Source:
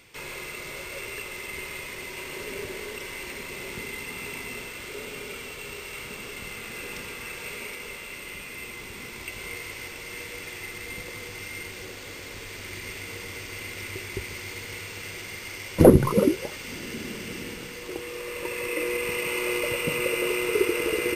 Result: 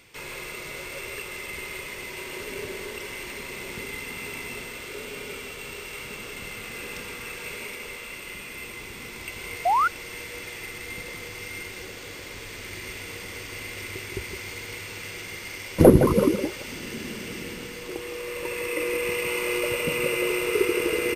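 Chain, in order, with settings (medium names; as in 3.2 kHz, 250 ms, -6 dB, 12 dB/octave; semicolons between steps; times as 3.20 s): echo from a far wall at 28 m, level -8 dB; painted sound rise, 9.65–9.88 s, 660–1500 Hz -20 dBFS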